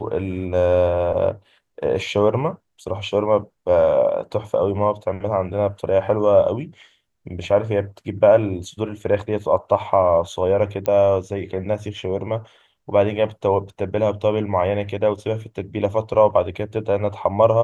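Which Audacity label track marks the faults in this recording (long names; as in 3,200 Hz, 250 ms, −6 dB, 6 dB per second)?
10.860000	10.860000	click −10 dBFS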